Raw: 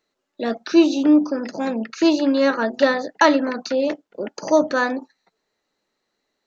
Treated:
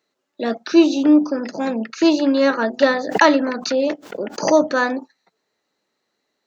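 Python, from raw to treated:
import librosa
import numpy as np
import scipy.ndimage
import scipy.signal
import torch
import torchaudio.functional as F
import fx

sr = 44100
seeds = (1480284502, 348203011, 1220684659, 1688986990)

y = scipy.signal.sosfilt(scipy.signal.butter(2, 93.0, 'highpass', fs=sr, output='sos'), x)
y = fx.pre_swell(y, sr, db_per_s=110.0, at=(2.96, 4.52), fade=0.02)
y = y * 10.0 ** (1.5 / 20.0)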